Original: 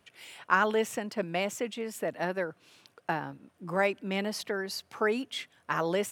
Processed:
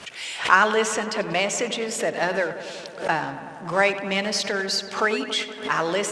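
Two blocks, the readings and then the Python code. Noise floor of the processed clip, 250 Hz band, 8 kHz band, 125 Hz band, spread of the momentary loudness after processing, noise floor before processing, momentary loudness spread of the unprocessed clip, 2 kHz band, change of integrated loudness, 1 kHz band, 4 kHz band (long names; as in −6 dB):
−39 dBFS, +4.5 dB, +13.0 dB, +4.0 dB, 10 LU, −69 dBFS, 11 LU, +10.0 dB, +8.0 dB, +8.5 dB, +12.5 dB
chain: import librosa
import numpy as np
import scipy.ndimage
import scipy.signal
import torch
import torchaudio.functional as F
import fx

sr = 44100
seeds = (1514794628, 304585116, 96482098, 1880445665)

y = fx.law_mismatch(x, sr, coded='mu')
y = scipy.signal.sosfilt(scipy.signal.butter(4, 7900.0, 'lowpass', fs=sr, output='sos'), y)
y = fx.tilt_eq(y, sr, slope=2.0)
y = fx.hum_notches(y, sr, base_hz=60, count=7)
y = fx.rider(y, sr, range_db=4, speed_s=2.0)
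y = fx.echo_filtered(y, sr, ms=94, feedback_pct=84, hz=3300.0, wet_db=-13)
y = fx.pre_swell(y, sr, db_per_s=150.0)
y = F.gain(torch.from_numpy(y), 6.0).numpy()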